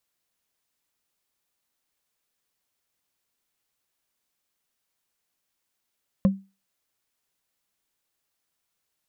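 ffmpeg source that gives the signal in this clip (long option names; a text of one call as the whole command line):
ffmpeg -f lavfi -i "aevalsrc='0.251*pow(10,-3*t/0.28)*sin(2*PI*194*t)+0.0891*pow(10,-3*t/0.083)*sin(2*PI*534.9*t)+0.0316*pow(10,-3*t/0.037)*sin(2*PI*1048.4*t)+0.0112*pow(10,-3*t/0.02)*sin(2*PI*1733*t)+0.00398*pow(10,-3*t/0.013)*sin(2*PI*2588*t)':duration=0.45:sample_rate=44100" out.wav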